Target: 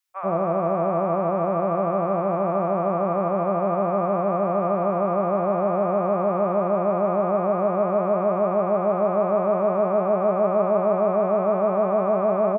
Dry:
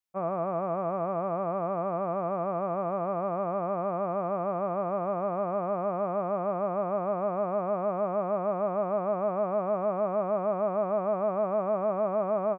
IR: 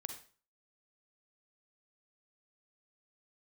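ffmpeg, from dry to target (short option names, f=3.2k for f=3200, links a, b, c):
-filter_complex "[0:a]acrossover=split=870[a][b];[a]adelay=90[c];[c][b]amix=inputs=2:normalize=0,asplit=2[d][e];[1:a]atrim=start_sample=2205,asetrate=70560,aresample=44100[f];[e][f]afir=irnorm=-1:irlink=0,volume=6.5dB[g];[d][g]amix=inputs=2:normalize=0,volume=3.5dB"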